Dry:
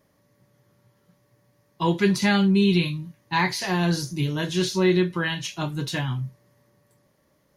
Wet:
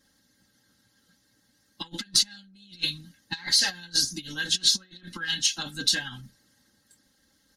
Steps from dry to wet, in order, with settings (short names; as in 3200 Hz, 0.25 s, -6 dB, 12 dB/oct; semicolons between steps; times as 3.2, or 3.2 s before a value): one diode to ground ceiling -10 dBFS; negative-ratio compressor -28 dBFS, ratio -0.5; ten-band EQ 125 Hz +8 dB, 500 Hz -5 dB, 1000 Hz -11 dB, 4000 Hz +11 dB, 8000 Hz +9 dB; harmonic-percussive split harmonic -13 dB; bell 1400 Hz +8 dB 0.51 oct; notch 2400 Hz, Q 8.7; comb 3.8 ms, depth 70%; small resonant body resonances 860/1600 Hz, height 11 dB, ringing for 45 ms; gain -4.5 dB